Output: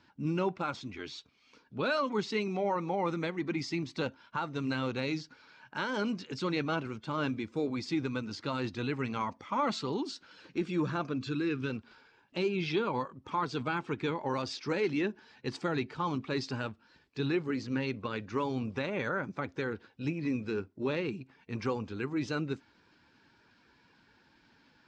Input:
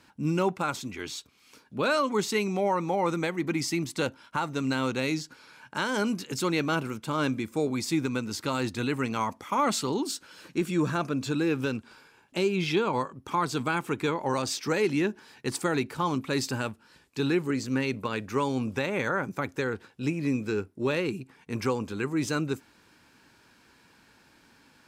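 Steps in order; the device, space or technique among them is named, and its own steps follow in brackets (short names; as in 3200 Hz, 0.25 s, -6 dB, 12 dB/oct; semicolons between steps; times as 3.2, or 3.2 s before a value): clip after many re-uploads (LPF 5300 Hz 24 dB/oct; bin magnitudes rounded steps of 15 dB); 11.18–11.7 band shelf 680 Hz -10 dB 1.1 oct; gain -4.5 dB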